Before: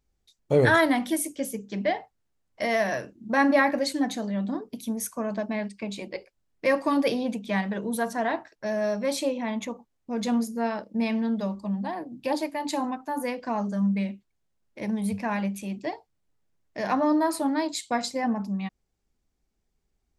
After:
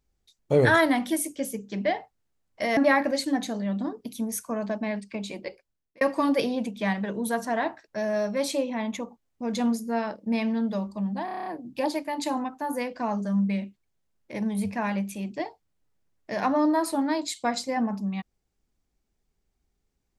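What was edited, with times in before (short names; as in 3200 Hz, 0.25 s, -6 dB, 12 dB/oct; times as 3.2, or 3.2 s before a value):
2.77–3.45 cut
6.09–6.69 fade out
11.93 stutter 0.03 s, 8 plays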